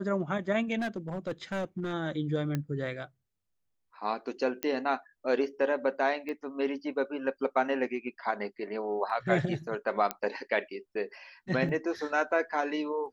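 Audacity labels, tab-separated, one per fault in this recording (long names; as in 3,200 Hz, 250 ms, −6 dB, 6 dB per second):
0.780000	1.930000	clipping −28.5 dBFS
2.550000	2.550000	click −18 dBFS
4.630000	4.630000	click −14 dBFS
6.290000	6.290000	click −25 dBFS
10.110000	10.110000	click −13 dBFS
11.690000	11.690000	drop-out 2.5 ms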